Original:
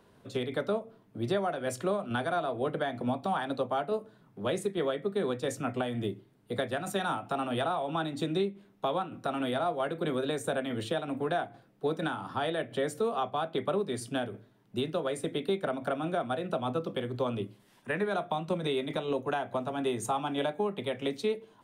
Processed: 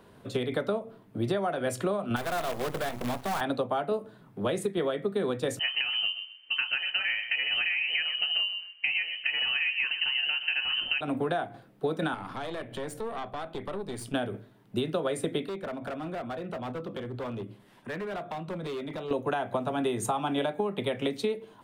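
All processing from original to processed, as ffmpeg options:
-filter_complex "[0:a]asettb=1/sr,asplit=3[s0][s1][s2];[s0]atrim=end=2.164[s3];[s1]atrim=start=2.16:end=3.41,asetpts=PTS-STARTPTS,afade=t=in:d=0.004:c=qsin,afade=t=out:st=1.246:d=0.004:c=qsin,equalizer=f=300:w=4.6:g=-7.5,acrusher=bits=6:dc=4:mix=0:aa=0.000001,asoftclip=type=hard:threshold=0.0251[s4];[s2]atrim=start=3.406[s5];[s3][s4]acrossfade=d=0.004:c1=hsin:c2=qsin[s6];[s6][s5]acrossfade=d=0.004:c1=qsin:c2=hsin,asettb=1/sr,asplit=3[s7][s8][s9];[s7]atrim=end=5.594[s10];[s8]atrim=start=5.59:end=11.01,asetpts=PTS-STARTPTS,afade=t=in:d=0.004:c=qsin,afade=t=out:st=5.416:d=0.004:c=qsin,aemphasis=mode=reproduction:type=50fm,asplit=2[s11][s12];[s12]adelay=127,lowpass=f=2200:p=1,volume=0.237,asplit=2[s13][s14];[s14]adelay=127,lowpass=f=2200:p=1,volume=0.27,asplit=2[s15][s16];[s16]adelay=127,lowpass=f=2200:p=1,volume=0.27[s17];[s11][s13][s15][s17]amix=inputs=4:normalize=0,atrim=end_sample=239022,lowpass=f=2700:t=q:w=0.5098,lowpass=f=2700:t=q:w=0.6013,lowpass=f=2700:t=q:w=0.9,lowpass=f=2700:t=q:w=2.563,afreqshift=-3200[s18];[s9]atrim=start=11.006[s19];[s10][s18]acrossfade=d=0.004:c1=hsin:c2=qsin[s20];[s20][s19]acrossfade=d=0.004:c1=qsin:c2=hsin,asettb=1/sr,asplit=3[s21][s22][s23];[s21]atrim=end=12.144[s24];[s22]atrim=start=12.14:end=14.14,asetpts=PTS-STARTPTS,afade=t=in:d=0.004:c=qsin,afade=t=out:st=1.996:d=0.004:c=qsin,acompressor=threshold=0.0141:ratio=2.5:attack=3.2:release=140:knee=1:detection=peak,aeval=exprs='(tanh(56.2*val(0)+0.65)-tanh(0.65))/56.2':c=same[s25];[s23]atrim=start=14.136[s26];[s24][s25]acrossfade=d=0.004:c1=hsin:c2=qsin[s27];[s27][s26]acrossfade=d=0.004:c1=qsin:c2=hsin,asettb=1/sr,asplit=3[s28][s29][s30];[s28]atrim=end=15.454[s31];[s29]atrim=start=15.45:end=19.11,asetpts=PTS-STARTPTS,afade=t=in:d=0.004:c=qsin,afade=t=out:st=3.656:d=0.004:c=qsin,highshelf=f=4300:g=-8,asoftclip=type=hard:threshold=0.0316,acompressor=threshold=0.00708:ratio=2.5:attack=3.2:release=140:knee=1:detection=peak[s32];[s30]atrim=start=19.106[s33];[s31][s32]acrossfade=d=0.004:c1=hsin:c2=qsin[s34];[s34][s33]acrossfade=d=0.004:c1=qsin:c2=hsin,acompressor=threshold=0.0282:ratio=6,equalizer=f=5900:t=o:w=0.77:g=-3.5,volume=2"

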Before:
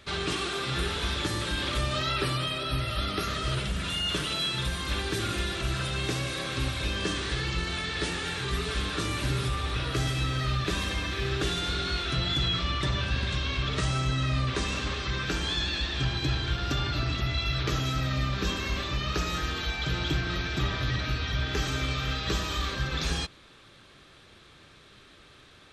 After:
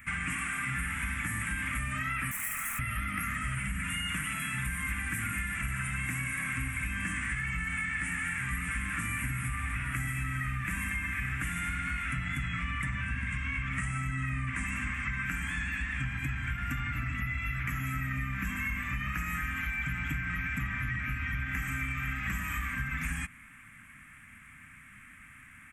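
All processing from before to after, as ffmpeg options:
-filter_complex "[0:a]asettb=1/sr,asplit=3[s0][s1][s2];[s0]atrim=end=2.314[s3];[s1]atrim=start=2.31:end=2.79,asetpts=PTS-STARTPTS,afade=t=in:d=0.004:c=qsin,afade=t=out:st=0.476:d=0.004:c=qsin,highpass=f=1200:t=q:w=4.2,aeval=exprs='0.0282*(abs(mod(val(0)/0.0282+3,4)-2)-1)':c=same[s4];[s2]atrim=start=2.786[s5];[s3][s4]acrossfade=d=0.004:c1=hsin:c2=qsin[s6];[s6][s5]acrossfade=d=0.004:c1=qsin:c2=hsin,firequalizer=gain_entry='entry(140,0);entry(250,4);entry(380,-29);entry(670,-14);entry(1100,-2);entry(2100,12);entry(4000,-30);entry(7800,5);entry(13000,13)':delay=0.05:min_phase=1,acompressor=threshold=0.0316:ratio=6"

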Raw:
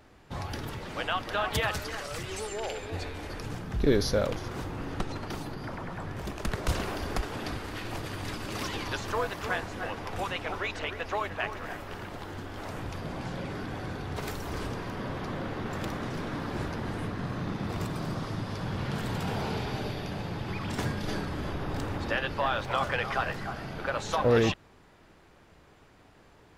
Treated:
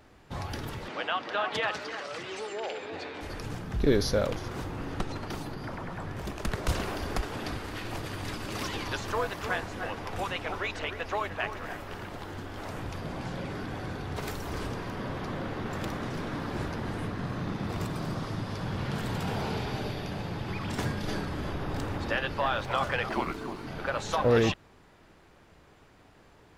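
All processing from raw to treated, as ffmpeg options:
-filter_complex "[0:a]asettb=1/sr,asplit=3[s0][s1][s2];[s0]atrim=end=0.884[s3];[s1]atrim=start=0.88:end=3.21,asetpts=PTS-STARTPTS,afade=t=in:d=0.004:c=qsin,afade=t=out:st=2.326:d=0.004:c=qsin,highpass=250,lowpass=4600,acompressor=mode=upward:threshold=0.02:ratio=2.5:attack=3.2:release=140:knee=2.83:detection=peak[s4];[s2]atrim=start=3.206[s5];[s3][s4]acrossfade=d=0.004:c1=hsin:c2=qsin[s6];[s6][s5]acrossfade=d=0.004:c1=qsin:c2=hsin,asettb=1/sr,asplit=3[s7][s8][s9];[s7]atrim=end=23.094[s10];[s8]atrim=start=23.09:end=23.67,asetpts=PTS-STARTPTS,afade=t=in:d=0.004:c=qsin,afade=t=out:st=0.576:d=0.004:c=qsin,afreqshift=-450,aeval=exprs='sgn(val(0))*max(abs(val(0))-0.00282,0)':c=same[s11];[s9]atrim=start=23.666[s12];[s10][s11]acrossfade=d=0.004:c1=hsin:c2=qsin[s13];[s13][s12]acrossfade=d=0.004:c1=qsin:c2=hsin"

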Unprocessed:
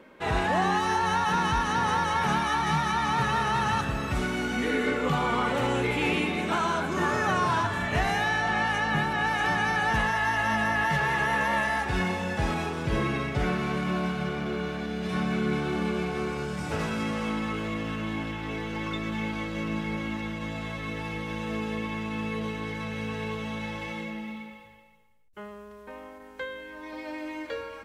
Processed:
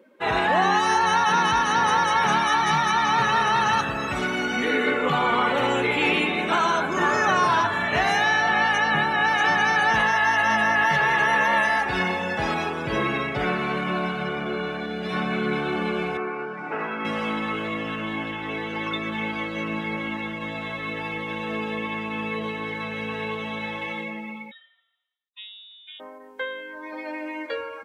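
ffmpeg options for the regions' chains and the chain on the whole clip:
-filter_complex "[0:a]asettb=1/sr,asplit=3[s0][s1][s2];[s0]atrim=end=16.174[s3];[s1]atrim=start=16.17:end=17.05,asetpts=PTS-STARTPTS,afade=t=in:d=0.004:c=qsin,afade=t=out:st=0.876:d=0.004:c=qsin,highpass=270,lowpass=2300,equalizer=f=550:w=4.8:g=-7[s4];[s2]atrim=start=17.046[s5];[s3][s4]acrossfade=d=0.004:c1=hsin:c2=qsin[s6];[s6][s5]acrossfade=d=0.004:c1=qsin:c2=hsin,asettb=1/sr,asplit=3[s7][s8][s9];[s7]atrim=end=24.514[s10];[s8]atrim=start=24.51:end=26,asetpts=PTS-STARTPTS,afade=t=in:d=0.004:c=qsin,afade=t=out:st=1.486:d=0.004:c=qsin,highpass=220,equalizer=f=530:w=0.32:g=-6,lowpass=f=3400:t=q:w=0.5098,lowpass=f=3400:t=q:w=0.6013,lowpass=f=3400:t=q:w=0.9,lowpass=f=3400:t=q:w=2.563,afreqshift=-4000[s11];[s9]atrim=start=25.996[s12];[s10][s11]acrossfade=d=0.004:c1=hsin:c2=qsin[s13];[s13][s12]acrossfade=d=0.004:c1=qsin:c2=hsin,afftdn=nr=16:nf=-43,highpass=f=360:p=1,highshelf=f=7100:g=8,volume=2"

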